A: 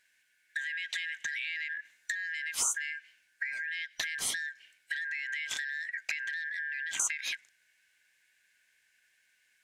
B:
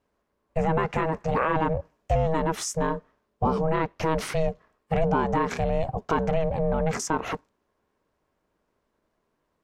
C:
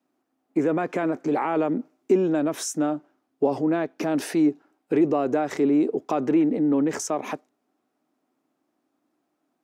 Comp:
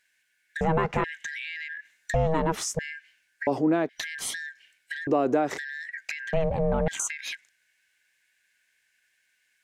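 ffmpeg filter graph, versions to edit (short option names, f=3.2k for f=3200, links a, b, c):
-filter_complex "[1:a]asplit=3[a][b][c];[2:a]asplit=2[d][e];[0:a]asplit=6[f][g][h][i][j][k];[f]atrim=end=0.612[l];[a]atrim=start=0.608:end=1.042[m];[g]atrim=start=1.038:end=2.142[n];[b]atrim=start=2.138:end=2.792[o];[h]atrim=start=2.788:end=3.472[p];[d]atrim=start=3.468:end=3.892[q];[i]atrim=start=3.888:end=5.072[r];[e]atrim=start=5.068:end=5.582[s];[j]atrim=start=5.578:end=6.332[t];[c]atrim=start=6.328:end=6.882[u];[k]atrim=start=6.878[v];[l][m]acrossfade=d=0.004:c1=hsin:c2=hsin[w];[w][n]acrossfade=d=0.004:c1=hsin:c2=hsin[x];[x][o]acrossfade=d=0.004:c1=hsin:c2=hsin[y];[y][p]acrossfade=d=0.004:c1=hsin:c2=hsin[z];[z][q]acrossfade=d=0.004:c1=hsin:c2=hsin[aa];[aa][r]acrossfade=d=0.004:c1=hsin:c2=hsin[ab];[ab][s]acrossfade=d=0.004:c1=hsin:c2=hsin[ac];[ac][t]acrossfade=d=0.004:c1=hsin:c2=hsin[ad];[ad][u]acrossfade=d=0.004:c1=hsin:c2=hsin[ae];[ae][v]acrossfade=d=0.004:c1=hsin:c2=hsin"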